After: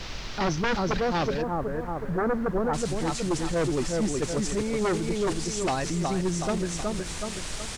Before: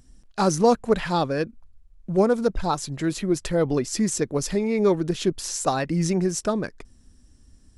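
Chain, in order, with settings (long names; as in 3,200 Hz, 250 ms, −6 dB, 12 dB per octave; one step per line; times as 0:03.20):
low-shelf EQ 280 Hz −5 dB
bit-depth reduction 6 bits, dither triangular
noise gate −23 dBFS, range −11 dB
low-shelf EQ 120 Hz +11.5 dB
repeating echo 371 ms, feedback 27%, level −6 dB
sine wavefolder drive 13 dB, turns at −5 dBFS
brickwall limiter −16.5 dBFS, peak gain reduction 12 dB
Butterworth low-pass 5,600 Hz 36 dB per octave, from 0:01.41 1,800 Hz, from 0:02.73 9,100 Hz
background noise brown −34 dBFS
level −4.5 dB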